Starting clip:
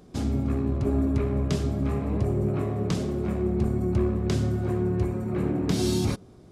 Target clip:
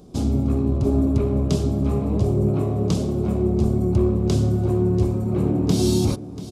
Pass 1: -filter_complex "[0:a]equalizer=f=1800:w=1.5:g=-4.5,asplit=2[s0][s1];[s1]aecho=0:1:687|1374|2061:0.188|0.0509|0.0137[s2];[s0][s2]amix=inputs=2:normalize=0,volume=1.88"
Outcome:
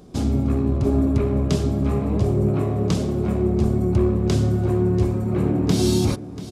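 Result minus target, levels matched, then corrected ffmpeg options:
2 kHz band +6.0 dB
-filter_complex "[0:a]equalizer=f=1800:w=1.5:g=-13.5,asplit=2[s0][s1];[s1]aecho=0:1:687|1374|2061:0.188|0.0509|0.0137[s2];[s0][s2]amix=inputs=2:normalize=0,volume=1.88"

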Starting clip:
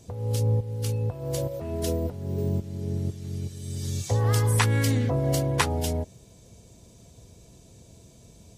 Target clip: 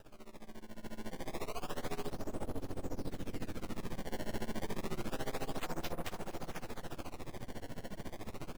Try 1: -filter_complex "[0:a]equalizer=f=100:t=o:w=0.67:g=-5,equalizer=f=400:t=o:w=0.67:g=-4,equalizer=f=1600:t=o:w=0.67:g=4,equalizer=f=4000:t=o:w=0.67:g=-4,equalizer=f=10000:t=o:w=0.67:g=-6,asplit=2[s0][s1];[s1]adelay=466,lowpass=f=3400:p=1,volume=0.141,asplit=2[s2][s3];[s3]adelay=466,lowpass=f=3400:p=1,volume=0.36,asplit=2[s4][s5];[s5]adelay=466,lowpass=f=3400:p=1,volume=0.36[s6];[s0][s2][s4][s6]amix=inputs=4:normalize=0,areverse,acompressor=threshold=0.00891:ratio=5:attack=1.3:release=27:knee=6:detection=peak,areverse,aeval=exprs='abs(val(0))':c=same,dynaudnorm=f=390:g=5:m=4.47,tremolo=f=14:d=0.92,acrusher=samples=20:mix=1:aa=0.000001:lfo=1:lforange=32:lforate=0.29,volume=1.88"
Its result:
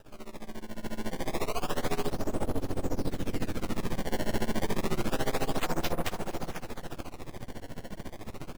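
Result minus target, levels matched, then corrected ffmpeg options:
compression: peak gain reduction -9 dB
-filter_complex "[0:a]equalizer=f=100:t=o:w=0.67:g=-5,equalizer=f=400:t=o:w=0.67:g=-4,equalizer=f=1600:t=o:w=0.67:g=4,equalizer=f=4000:t=o:w=0.67:g=-4,equalizer=f=10000:t=o:w=0.67:g=-6,asplit=2[s0][s1];[s1]adelay=466,lowpass=f=3400:p=1,volume=0.141,asplit=2[s2][s3];[s3]adelay=466,lowpass=f=3400:p=1,volume=0.36,asplit=2[s4][s5];[s5]adelay=466,lowpass=f=3400:p=1,volume=0.36[s6];[s0][s2][s4][s6]amix=inputs=4:normalize=0,areverse,acompressor=threshold=0.00237:ratio=5:attack=1.3:release=27:knee=6:detection=peak,areverse,aeval=exprs='abs(val(0))':c=same,dynaudnorm=f=390:g=5:m=4.47,tremolo=f=14:d=0.92,acrusher=samples=20:mix=1:aa=0.000001:lfo=1:lforange=32:lforate=0.29,volume=1.88"

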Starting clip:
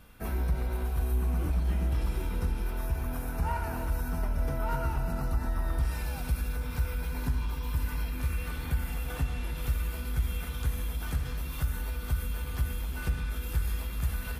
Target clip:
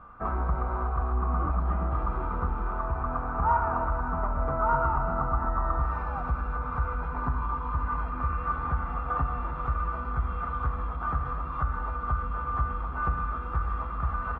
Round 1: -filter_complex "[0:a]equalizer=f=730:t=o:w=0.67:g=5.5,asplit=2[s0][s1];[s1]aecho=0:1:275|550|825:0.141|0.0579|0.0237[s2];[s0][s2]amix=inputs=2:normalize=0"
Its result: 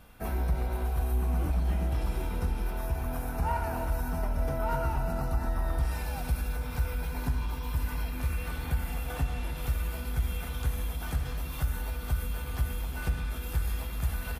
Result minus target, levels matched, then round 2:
1 kHz band -7.5 dB
-filter_complex "[0:a]lowpass=f=1200:t=q:w=12,equalizer=f=730:t=o:w=0.67:g=5.5,asplit=2[s0][s1];[s1]aecho=0:1:275|550|825:0.141|0.0579|0.0237[s2];[s0][s2]amix=inputs=2:normalize=0"

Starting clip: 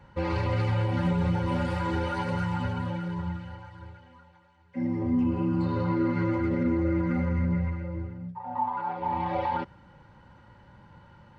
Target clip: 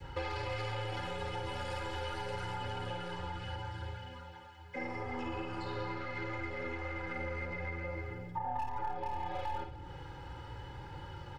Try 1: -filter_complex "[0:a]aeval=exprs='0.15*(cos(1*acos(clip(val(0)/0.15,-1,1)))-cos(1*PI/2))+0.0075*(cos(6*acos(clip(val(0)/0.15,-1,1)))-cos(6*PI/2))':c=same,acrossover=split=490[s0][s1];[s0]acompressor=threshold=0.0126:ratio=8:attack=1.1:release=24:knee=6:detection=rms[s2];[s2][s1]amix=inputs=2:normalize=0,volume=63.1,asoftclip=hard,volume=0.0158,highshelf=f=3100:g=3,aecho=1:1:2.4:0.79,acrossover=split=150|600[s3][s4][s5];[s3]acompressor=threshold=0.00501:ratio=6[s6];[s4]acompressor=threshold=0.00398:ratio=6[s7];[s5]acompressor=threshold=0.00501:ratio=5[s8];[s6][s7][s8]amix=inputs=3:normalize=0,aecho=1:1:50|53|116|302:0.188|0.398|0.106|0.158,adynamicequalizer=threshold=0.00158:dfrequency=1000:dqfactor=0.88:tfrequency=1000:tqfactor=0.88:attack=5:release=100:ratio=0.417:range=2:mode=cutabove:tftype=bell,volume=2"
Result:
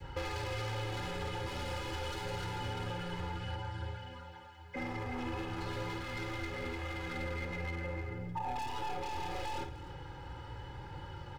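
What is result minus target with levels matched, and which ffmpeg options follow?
overload inside the chain: distortion +16 dB; compression: peak gain reduction -7 dB
-filter_complex "[0:a]aeval=exprs='0.15*(cos(1*acos(clip(val(0)/0.15,-1,1)))-cos(1*PI/2))+0.0075*(cos(6*acos(clip(val(0)/0.15,-1,1)))-cos(6*PI/2))':c=same,acrossover=split=490[s0][s1];[s0]acompressor=threshold=0.00501:ratio=8:attack=1.1:release=24:knee=6:detection=rms[s2];[s2][s1]amix=inputs=2:normalize=0,volume=16.8,asoftclip=hard,volume=0.0596,highshelf=f=3100:g=3,aecho=1:1:2.4:0.79,acrossover=split=150|600[s3][s4][s5];[s3]acompressor=threshold=0.00501:ratio=6[s6];[s4]acompressor=threshold=0.00398:ratio=6[s7];[s5]acompressor=threshold=0.00501:ratio=5[s8];[s6][s7][s8]amix=inputs=3:normalize=0,aecho=1:1:50|53|116|302:0.188|0.398|0.106|0.158,adynamicequalizer=threshold=0.00158:dfrequency=1000:dqfactor=0.88:tfrequency=1000:tqfactor=0.88:attack=5:release=100:ratio=0.417:range=2:mode=cutabove:tftype=bell,volume=2"

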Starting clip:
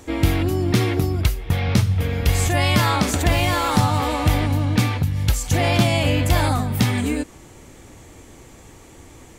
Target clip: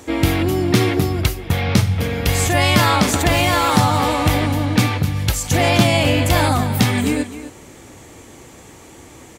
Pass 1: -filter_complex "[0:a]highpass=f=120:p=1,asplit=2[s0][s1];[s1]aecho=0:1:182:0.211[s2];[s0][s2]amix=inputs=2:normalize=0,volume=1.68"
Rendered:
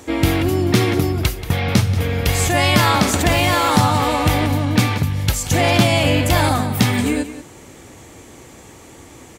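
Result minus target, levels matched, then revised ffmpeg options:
echo 80 ms early
-filter_complex "[0:a]highpass=f=120:p=1,asplit=2[s0][s1];[s1]aecho=0:1:262:0.211[s2];[s0][s2]amix=inputs=2:normalize=0,volume=1.68"

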